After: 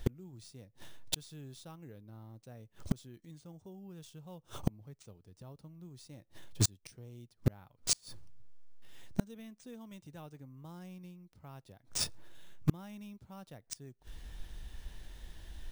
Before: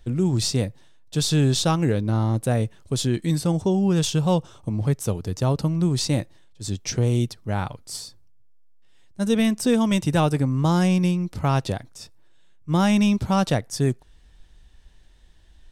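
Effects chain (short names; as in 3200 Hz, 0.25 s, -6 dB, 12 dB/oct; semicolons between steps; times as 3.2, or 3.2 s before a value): flipped gate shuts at -23 dBFS, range -35 dB; in parallel at -8 dB: requantised 6-bit, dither none; on the sum: careless resampling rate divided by 3×, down none, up hold; gain +5.5 dB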